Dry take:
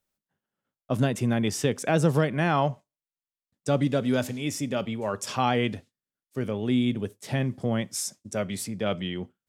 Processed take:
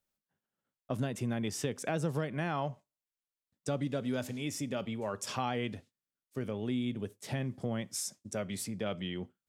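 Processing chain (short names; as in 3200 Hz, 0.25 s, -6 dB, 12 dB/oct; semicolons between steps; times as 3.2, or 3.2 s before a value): compressor 2:1, threshold -30 dBFS, peak gain reduction 8 dB; gain -4 dB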